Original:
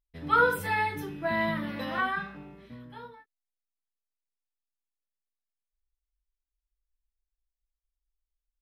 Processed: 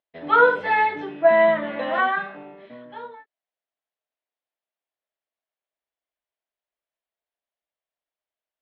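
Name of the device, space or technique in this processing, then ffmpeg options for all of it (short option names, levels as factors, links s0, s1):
phone earpiece: -filter_complex "[0:a]highpass=340,equalizer=f=640:t=q:w=4:g=10,equalizer=f=1300:t=q:w=4:g=-3,equalizer=f=2500:t=q:w=4:g=-3,lowpass=f=3300:w=0.5412,lowpass=f=3300:w=1.3066,asettb=1/sr,asplit=3[s0][s1][s2];[s0]atrim=end=1.224[s3];[s1]atrim=start=1.22:end=1.94,asetpts=PTS-STARTPTS,afade=t=in:d=0.004:c=qsin,afade=t=out:st=0.716:d=0.004:c=qsin,lowpass=f=3700:w=0.5412,lowpass=f=3700:w=1.3066[s4];[s2]atrim=start=1.936[s5];[s3][s4]acrossfade=d=0.004:c1=hsin:c2=qsin[s6];[s6][s5]acrossfade=d=0.004:c1=qsin:c2=hsin,volume=2.51"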